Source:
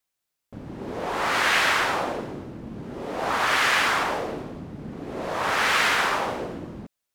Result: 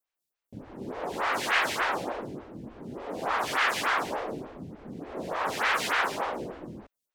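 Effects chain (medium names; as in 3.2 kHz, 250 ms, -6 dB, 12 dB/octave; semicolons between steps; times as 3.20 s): lamp-driven phase shifter 3.4 Hz; trim -2 dB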